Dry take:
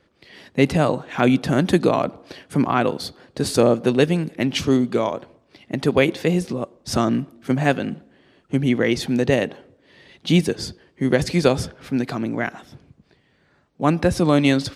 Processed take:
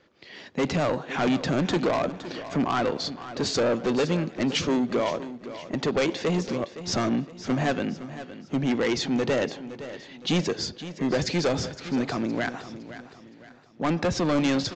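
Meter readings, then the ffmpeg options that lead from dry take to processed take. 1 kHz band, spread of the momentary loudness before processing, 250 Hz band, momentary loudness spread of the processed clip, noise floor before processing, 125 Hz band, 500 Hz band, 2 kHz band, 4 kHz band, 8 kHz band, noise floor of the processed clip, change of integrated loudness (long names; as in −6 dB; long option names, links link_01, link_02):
−4.5 dB, 11 LU, −6.0 dB, 13 LU, −61 dBFS, −7.5 dB, −5.5 dB, −5.0 dB, −2.0 dB, −2.5 dB, −49 dBFS, −6.0 dB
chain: -af "lowshelf=frequency=130:gain=-10,aresample=16000,asoftclip=type=tanh:threshold=-20.5dB,aresample=44100,aecho=1:1:514|1028|1542|2056:0.211|0.0824|0.0321|0.0125,volume=1dB"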